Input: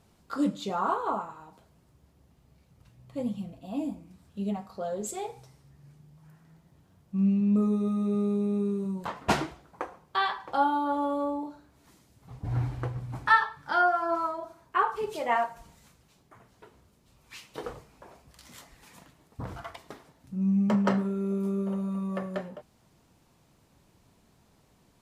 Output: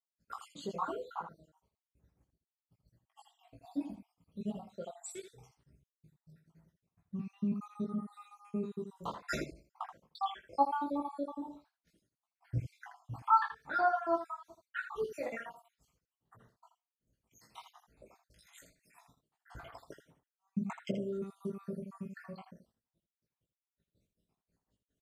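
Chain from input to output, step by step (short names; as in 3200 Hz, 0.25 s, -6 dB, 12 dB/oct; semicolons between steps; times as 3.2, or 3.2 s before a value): random spectral dropouts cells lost 70%; expander -55 dBFS; early reflections 18 ms -4 dB, 80 ms -9 dB; gain -5 dB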